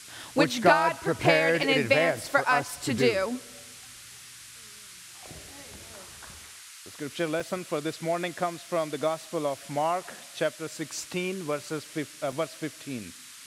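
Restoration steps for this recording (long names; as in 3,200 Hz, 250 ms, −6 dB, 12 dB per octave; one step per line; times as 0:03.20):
repair the gap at 0:01.63/0:07.40/0:12.32, 3.4 ms
noise reduction from a noise print 25 dB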